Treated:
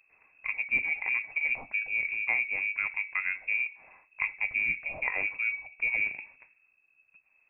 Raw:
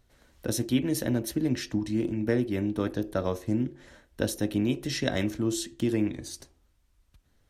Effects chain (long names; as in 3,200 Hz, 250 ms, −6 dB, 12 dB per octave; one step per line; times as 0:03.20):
voice inversion scrambler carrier 2,600 Hz
level −3 dB